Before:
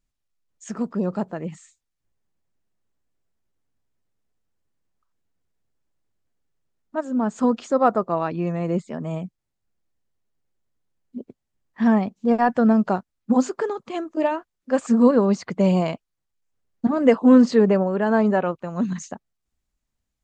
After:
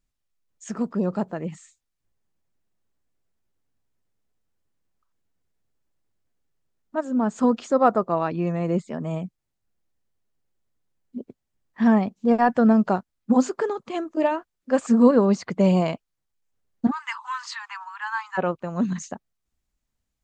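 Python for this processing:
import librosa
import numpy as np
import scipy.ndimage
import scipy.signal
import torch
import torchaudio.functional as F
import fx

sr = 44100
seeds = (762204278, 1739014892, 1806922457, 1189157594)

y = fx.steep_highpass(x, sr, hz=890.0, slope=96, at=(16.9, 18.37), fade=0.02)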